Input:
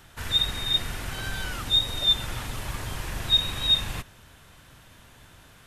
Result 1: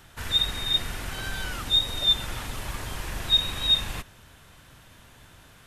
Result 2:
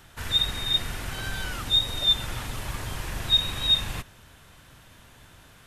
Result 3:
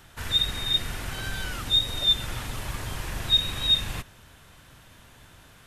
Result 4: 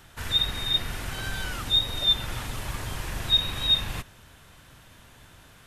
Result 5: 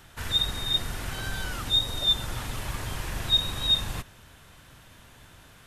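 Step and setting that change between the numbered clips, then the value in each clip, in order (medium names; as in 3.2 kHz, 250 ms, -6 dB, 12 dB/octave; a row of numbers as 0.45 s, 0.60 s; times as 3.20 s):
dynamic bell, frequency: 120 Hz, 360 Hz, 900 Hz, 7.8 kHz, 2.4 kHz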